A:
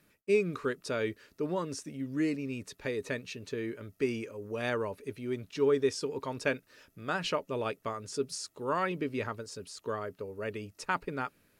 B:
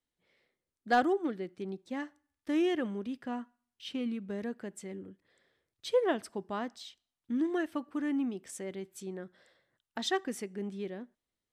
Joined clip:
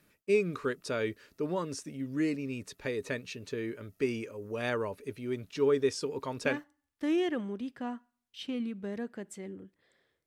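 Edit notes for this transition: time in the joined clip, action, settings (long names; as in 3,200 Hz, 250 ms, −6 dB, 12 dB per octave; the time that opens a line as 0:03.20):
A
0:06.48: continue with B from 0:01.94, crossfade 0.32 s logarithmic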